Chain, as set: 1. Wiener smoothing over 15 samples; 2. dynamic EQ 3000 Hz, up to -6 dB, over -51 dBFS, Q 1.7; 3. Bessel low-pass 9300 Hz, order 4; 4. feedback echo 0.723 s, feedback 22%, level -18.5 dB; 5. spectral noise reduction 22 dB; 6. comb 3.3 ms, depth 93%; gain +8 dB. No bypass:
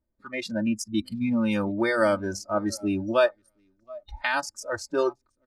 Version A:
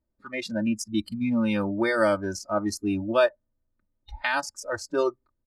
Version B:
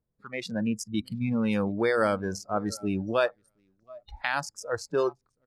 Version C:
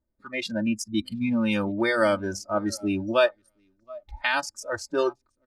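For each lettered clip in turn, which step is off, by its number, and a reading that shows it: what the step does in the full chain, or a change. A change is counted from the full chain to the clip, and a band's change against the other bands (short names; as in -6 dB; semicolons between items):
4, momentary loudness spread change -2 LU; 6, 125 Hz band +4.5 dB; 2, 4 kHz band +3.0 dB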